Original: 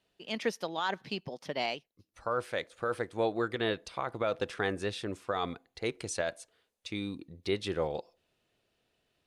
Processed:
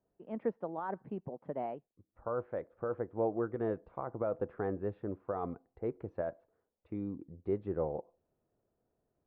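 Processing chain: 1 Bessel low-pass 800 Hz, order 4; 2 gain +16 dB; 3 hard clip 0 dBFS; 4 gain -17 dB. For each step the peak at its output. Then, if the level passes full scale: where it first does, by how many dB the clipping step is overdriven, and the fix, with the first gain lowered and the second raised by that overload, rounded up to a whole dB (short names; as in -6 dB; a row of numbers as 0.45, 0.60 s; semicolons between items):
-20.0, -4.0, -4.0, -21.0 dBFS; no overload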